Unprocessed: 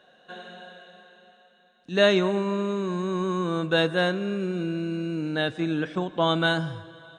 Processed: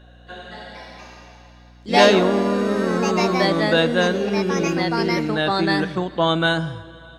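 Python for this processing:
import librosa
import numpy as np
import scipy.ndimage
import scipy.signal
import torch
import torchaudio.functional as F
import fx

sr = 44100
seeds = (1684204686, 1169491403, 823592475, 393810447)

y = fx.echo_pitch(x, sr, ms=272, semitones=3, count=3, db_per_echo=-3.0)
y = fx.add_hum(y, sr, base_hz=60, snr_db=27)
y = y * librosa.db_to_amplitude(4.0)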